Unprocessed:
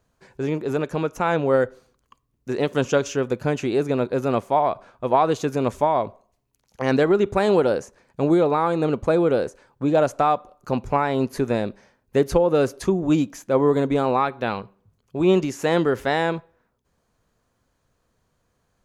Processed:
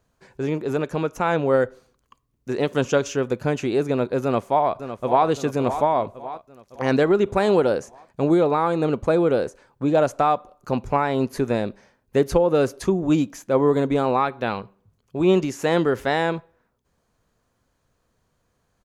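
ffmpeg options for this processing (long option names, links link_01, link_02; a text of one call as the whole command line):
ffmpeg -i in.wav -filter_complex "[0:a]asplit=2[link_01][link_02];[link_02]afade=type=in:start_time=4.23:duration=0.01,afade=type=out:start_time=5.25:duration=0.01,aecho=0:1:560|1120|1680|2240|2800|3360:0.298538|0.164196|0.0903078|0.0496693|0.0273181|0.015025[link_03];[link_01][link_03]amix=inputs=2:normalize=0" out.wav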